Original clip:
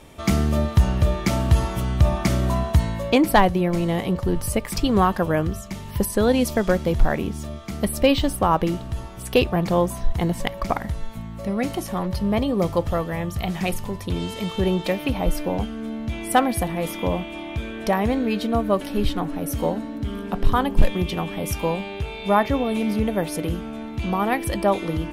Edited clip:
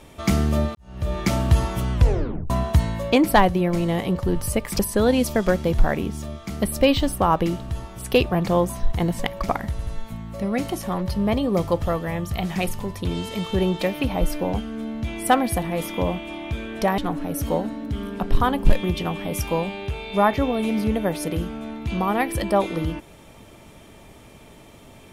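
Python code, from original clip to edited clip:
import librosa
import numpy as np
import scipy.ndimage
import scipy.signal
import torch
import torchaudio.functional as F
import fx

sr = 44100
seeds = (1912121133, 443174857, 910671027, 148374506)

y = fx.edit(x, sr, fx.fade_in_span(start_s=0.75, length_s=0.44, curve='qua'),
    fx.tape_stop(start_s=1.93, length_s=0.57),
    fx.cut(start_s=4.79, length_s=1.21),
    fx.stutter(start_s=10.92, slice_s=0.08, count=3),
    fx.cut(start_s=18.03, length_s=1.07), tone=tone)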